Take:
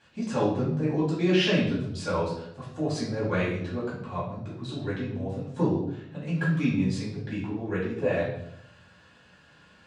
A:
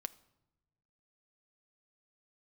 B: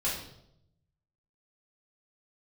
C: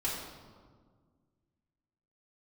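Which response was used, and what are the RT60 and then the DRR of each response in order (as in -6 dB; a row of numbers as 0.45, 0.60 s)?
B; not exponential, 0.75 s, 1.7 s; 12.0, -8.0, -8.0 dB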